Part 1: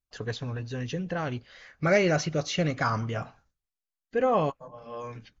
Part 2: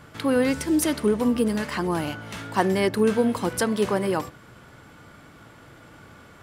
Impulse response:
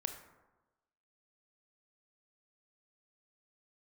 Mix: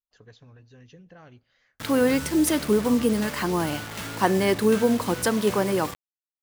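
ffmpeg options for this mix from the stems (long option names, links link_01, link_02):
-filter_complex "[0:a]acompressor=threshold=-26dB:ratio=6,volume=-17.5dB,asplit=2[link_01][link_02];[link_02]volume=-22.5dB[link_03];[1:a]acrusher=bits=5:mix=0:aa=0.000001,adelay=1650,volume=0.5dB[link_04];[2:a]atrim=start_sample=2205[link_05];[link_03][link_05]afir=irnorm=-1:irlink=0[link_06];[link_01][link_04][link_06]amix=inputs=3:normalize=0"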